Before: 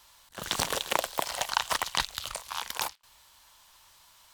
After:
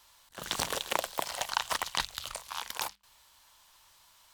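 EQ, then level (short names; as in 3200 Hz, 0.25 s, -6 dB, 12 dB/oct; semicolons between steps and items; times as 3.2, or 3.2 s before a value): notches 50/100/150/200 Hz; -3.0 dB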